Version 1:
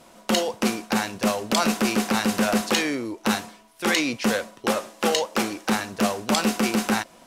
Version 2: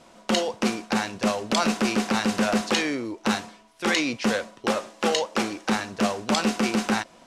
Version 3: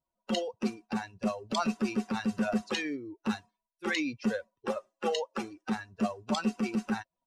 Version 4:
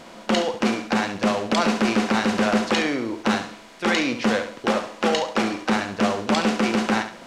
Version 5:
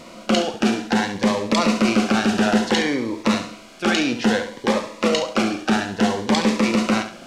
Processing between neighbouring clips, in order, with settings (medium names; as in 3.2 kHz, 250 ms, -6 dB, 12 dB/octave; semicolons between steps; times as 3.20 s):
low-pass 7.7 kHz 12 dB/octave; trim -1 dB
expander on every frequency bin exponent 2; treble shelf 5.3 kHz -10 dB; trim -3 dB
spectral levelling over time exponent 0.4; flutter echo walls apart 11.8 m, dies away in 0.42 s; trim +5 dB
Shepard-style phaser rising 0.59 Hz; trim +3.5 dB